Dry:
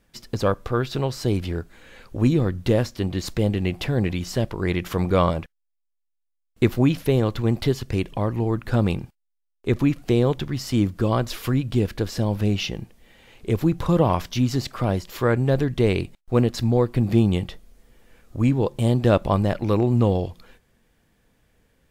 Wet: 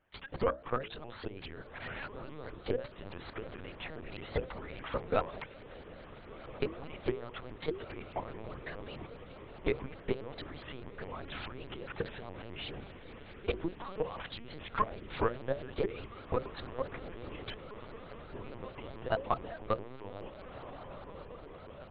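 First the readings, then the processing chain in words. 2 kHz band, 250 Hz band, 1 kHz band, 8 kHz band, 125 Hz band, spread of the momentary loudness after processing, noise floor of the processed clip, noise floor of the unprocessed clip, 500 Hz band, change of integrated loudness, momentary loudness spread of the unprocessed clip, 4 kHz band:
-9.5 dB, -21.5 dB, -9.5 dB, under -40 dB, -23.5 dB, 14 LU, -51 dBFS, -75 dBFS, -13.0 dB, -17.0 dB, 7 LU, -13.0 dB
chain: compressor 12:1, threshold -30 dBFS, peak gain reduction 18.5 dB; overdrive pedal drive 13 dB, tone 1500 Hz, clips at -18 dBFS; low shelf 91 Hz -10.5 dB; level quantiser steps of 16 dB; diffused feedback echo 1.546 s, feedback 75%, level -11 dB; harmonic-percussive split percussive +5 dB; low shelf 330 Hz -4.5 dB; LPC vocoder at 8 kHz pitch kept; notches 60/120/180/240/300/360/420/480/540/600 Hz; shaped vibrato saw up 4.8 Hz, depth 250 cents; gain +3 dB

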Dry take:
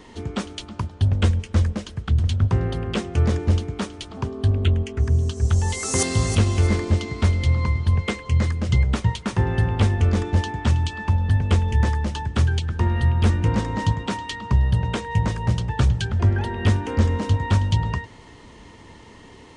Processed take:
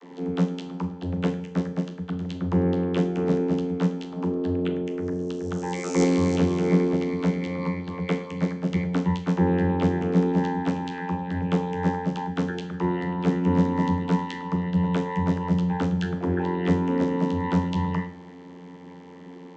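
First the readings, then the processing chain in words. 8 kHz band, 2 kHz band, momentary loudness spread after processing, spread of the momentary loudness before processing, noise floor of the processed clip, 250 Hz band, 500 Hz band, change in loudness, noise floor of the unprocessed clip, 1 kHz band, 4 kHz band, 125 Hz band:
-13.0 dB, -5.0 dB, 9 LU, 7 LU, -43 dBFS, +5.0 dB, +3.5 dB, -3.5 dB, -45 dBFS, -0.5 dB, -9.0 dB, -8.0 dB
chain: vocoder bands 32, saw 89 Hz; Schroeder reverb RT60 0.5 s, combs from 26 ms, DRR 8.5 dB

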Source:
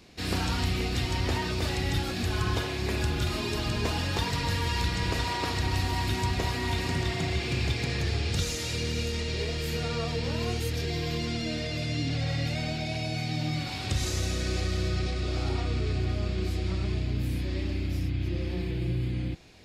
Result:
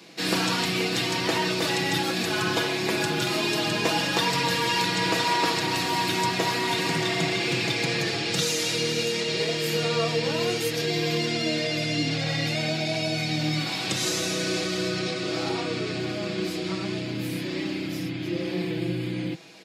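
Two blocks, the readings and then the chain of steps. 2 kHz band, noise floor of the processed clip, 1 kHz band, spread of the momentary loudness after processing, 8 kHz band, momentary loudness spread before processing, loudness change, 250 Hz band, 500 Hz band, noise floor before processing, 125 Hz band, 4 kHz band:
+7.5 dB, -31 dBFS, +7.0 dB, 7 LU, +7.5 dB, 3 LU, +4.5 dB, +5.0 dB, +7.0 dB, -33 dBFS, -3.5 dB, +7.5 dB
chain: Bessel high-pass 220 Hz, order 8; comb 6.1 ms, depth 49%; gain +6.5 dB

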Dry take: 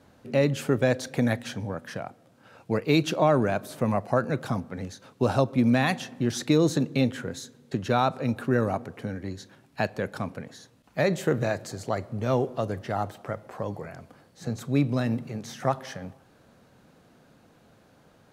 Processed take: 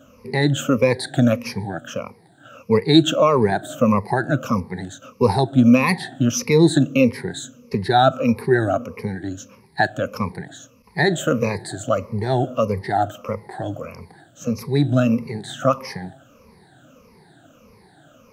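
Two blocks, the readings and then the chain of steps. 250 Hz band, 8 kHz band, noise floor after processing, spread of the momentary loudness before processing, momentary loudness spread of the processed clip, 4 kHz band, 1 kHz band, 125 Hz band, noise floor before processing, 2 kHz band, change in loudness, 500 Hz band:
+7.5 dB, +8.5 dB, -53 dBFS, 15 LU, 16 LU, +9.0 dB, +8.0 dB, +6.0 dB, -59 dBFS, +7.5 dB, +7.0 dB, +6.5 dB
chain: moving spectral ripple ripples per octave 0.86, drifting -1.6 Hz, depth 23 dB; gain +2 dB

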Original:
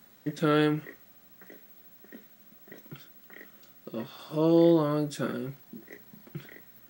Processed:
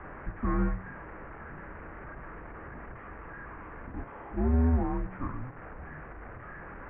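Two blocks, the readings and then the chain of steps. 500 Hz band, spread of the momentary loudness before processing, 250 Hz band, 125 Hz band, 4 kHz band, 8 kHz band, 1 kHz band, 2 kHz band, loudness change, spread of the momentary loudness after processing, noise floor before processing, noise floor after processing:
-11.5 dB, 24 LU, -6.0 dB, +2.0 dB, under -25 dB, n/a, -1.5 dB, -2.0 dB, -8.0 dB, 17 LU, -58 dBFS, -46 dBFS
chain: delta modulation 16 kbps, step -34 dBFS; mistuned SSB -260 Hz 190–2100 Hz; de-hum 93.08 Hz, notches 38; gain -1.5 dB

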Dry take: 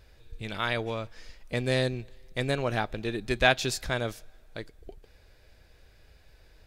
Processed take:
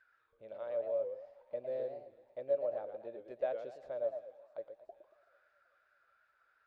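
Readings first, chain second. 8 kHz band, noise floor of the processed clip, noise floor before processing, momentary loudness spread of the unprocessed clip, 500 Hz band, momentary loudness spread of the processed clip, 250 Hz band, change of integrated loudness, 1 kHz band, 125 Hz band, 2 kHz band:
under -40 dB, -75 dBFS, -59 dBFS, 20 LU, -4.5 dB, 16 LU, -23.5 dB, -10.5 dB, -17.0 dB, under -30 dB, -29.5 dB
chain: in parallel at +2 dB: compressor, threshold -35 dBFS, peak gain reduction 18 dB; on the sum: auto-wah 570–1700 Hz, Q 19, down, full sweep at -30.5 dBFS; thinning echo 0.38 s, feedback 82%, high-pass 760 Hz, level -22 dB; warbling echo 0.112 s, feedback 38%, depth 199 cents, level -8 dB; gain +1.5 dB

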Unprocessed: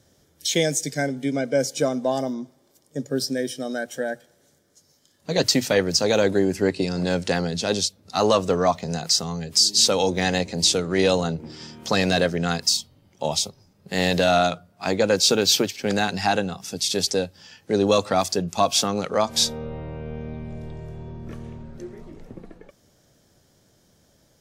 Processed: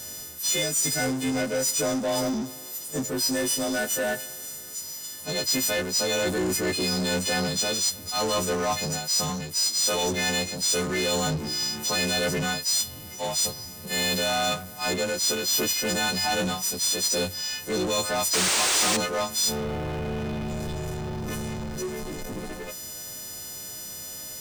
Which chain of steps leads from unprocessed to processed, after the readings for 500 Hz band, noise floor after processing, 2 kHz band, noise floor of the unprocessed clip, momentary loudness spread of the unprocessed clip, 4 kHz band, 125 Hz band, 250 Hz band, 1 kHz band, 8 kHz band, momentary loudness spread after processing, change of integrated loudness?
-6.0 dB, -40 dBFS, 0.0 dB, -62 dBFS, 17 LU, -2.0 dB, -4.0 dB, -4.0 dB, -4.5 dB, +2.5 dB, 12 LU, -3.5 dB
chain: frequency quantiser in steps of 3 st; high shelf 6700 Hz +6.5 dB; reverse; compressor 6:1, threshold -22 dBFS, peak gain reduction 19.5 dB; reverse; painted sound noise, 18.33–18.97, 280–9400 Hz -21 dBFS; power-law curve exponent 0.5; gain -8.5 dB

